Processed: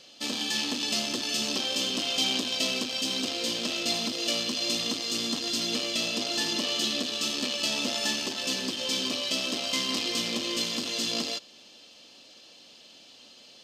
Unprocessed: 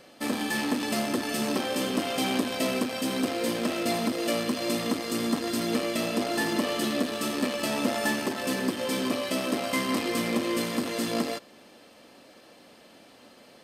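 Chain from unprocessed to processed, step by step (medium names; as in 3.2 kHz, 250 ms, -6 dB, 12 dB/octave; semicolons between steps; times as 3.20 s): high-order bell 4.4 kHz +15 dB; trim -7 dB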